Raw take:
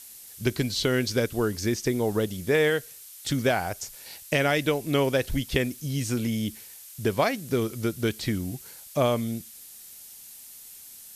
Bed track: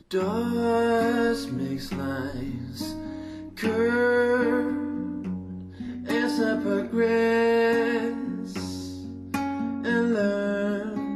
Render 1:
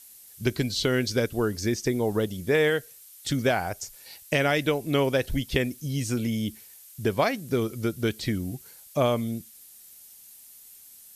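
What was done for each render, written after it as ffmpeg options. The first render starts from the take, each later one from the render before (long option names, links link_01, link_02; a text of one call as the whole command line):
ffmpeg -i in.wav -af "afftdn=noise_reduction=6:noise_floor=-46" out.wav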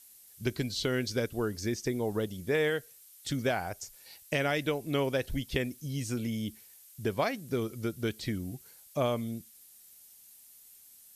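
ffmpeg -i in.wav -af "volume=-6dB" out.wav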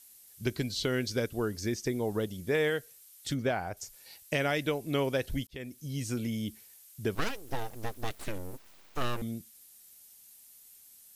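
ffmpeg -i in.wav -filter_complex "[0:a]asettb=1/sr,asplit=3[link_01][link_02][link_03];[link_01]atrim=end=3.344[link_04];[link_02]atrim=start=3.34:end=3.77,asetpts=PTS-STARTPTS,afade=type=in:duration=0.004:curve=qsin,afade=type=out:start_time=0.426:duration=0.004:curve=qsin,highshelf=frequency=4000:gain=-10.5[link_05];[link_03]atrim=start=3.766[link_06];[link_04][link_05]acrossfade=duration=0.004:curve1=hsin:curve2=qsin[link_07];[link_07][link_06]acrossfade=duration=0.004:curve1=qsin:curve2=hsin,asettb=1/sr,asplit=3[link_08][link_09][link_10];[link_08]atrim=end=7.154[link_11];[link_09]atrim=start=7.15:end=9.22,asetpts=PTS-STARTPTS,afade=type=in:duration=0.004:curve=qsin,afade=type=out:start_time=2.066:duration=0.004:curve=qsin,aeval=exprs='abs(val(0))':channel_layout=same[link_12];[link_10]atrim=start=9.216[link_13];[link_11][link_12]acrossfade=duration=0.004:curve1=hsin:curve2=qsin[link_14];[link_14][link_13]acrossfade=duration=0.004:curve1=qsin:curve2=hsin,asplit=2[link_15][link_16];[link_15]atrim=end=5.47,asetpts=PTS-STARTPTS,afade=type=out:start_time=5.466:duration=0.004:curve=hsin[link_17];[link_16]atrim=start=5.47,asetpts=PTS-STARTPTS,afade=type=in:duration=0.65:curve=qsin[link_18];[link_17][link_18]concat=n=2:v=0:a=1" out.wav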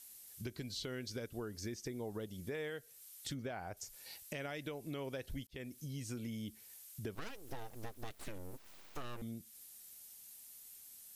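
ffmpeg -i in.wav -af "alimiter=limit=-22dB:level=0:latency=1:release=143,acompressor=threshold=-45dB:ratio=2.5" out.wav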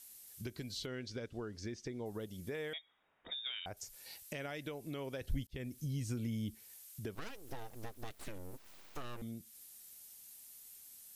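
ffmpeg -i in.wav -filter_complex "[0:a]asettb=1/sr,asplit=3[link_01][link_02][link_03];[link_01]atrim=end=0.864[link_04];[link_02]atrim=start=0.86:end=2.06,asetpts=PTS-STARTPTS,afade=type=in:duration=0.004:curve=qsin,afade=type=out:start_time=1.196:duration=0.004:curve=qsin,lowpass=5400[link_05];[link_03]atrim=start=2.056[link_06];[link_04][link_05]acrossfade=duration=0.004:curve1=hsin:curve2=qsin[link_07];[link_07][link_06]acrossfade=duration=0.004:curve1=qsin:curve2=hsin,asettb=1/sr,asplit=3[link_08][link_09][link_10];[link_08]atrim=end=2.734[link_11];[link_09]atrim=start=2.73:end=3.66,asetpts=PTS-STARTPTS,afade=type=in:duration=0.004:curve=qsin,afade=type=out:start_time=0.926:duration=0.004:curve=qsin,lowpass=frequency=3200:width_type=q:width=0.5098,lowpass=frequency=3200:width_type=q:width=0.6013,lowpass=frequency=3200:width_type=q:width=0.9,lowpass=frequency=3200:width_type=q:width=2.563,afreqshift=-3800[link_12];[link_10]atrim=start=3.656[link_13];[link_11][link_12]acrossfade=duration=0.004:curve1=hsin:curve2=qsin[link_14];[link_14][link_13]acrossfade=duration=0.004:curve1=qsin:curve2=hsin,asettb=1/sr,asplit=3[link_15][link_16][link_17];[link_15]atrim=end=5.214[link_18];[link_16]atrim=start=5.21:end=6.55,asetpts=PTS-STARTPTS,afade=type=in:duration=0.004:curve=qsin,afade=type=out:start_time=1.336:duration=0.004:curve=qsin,lowshelf=frequency=170:gain=10.5[link_19];[link_17]atrim=start=6.546[link_20];[link_18][link_19]acrossfade=duration=0.004:curve1=hsin:curve2=qsin[link_21];[link_21][link_20]acrossfade=duration=0.004:curve1=qsin:curve2=hsin" out.wav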